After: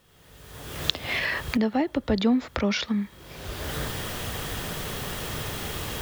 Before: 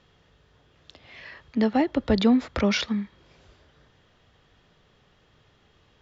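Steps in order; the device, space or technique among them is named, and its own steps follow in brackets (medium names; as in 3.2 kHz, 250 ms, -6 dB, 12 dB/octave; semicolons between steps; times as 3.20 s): cheap recorder with automatic gain (white noise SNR 38 dB; recorder AGC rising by 35 dB/s); trim -2.5 dB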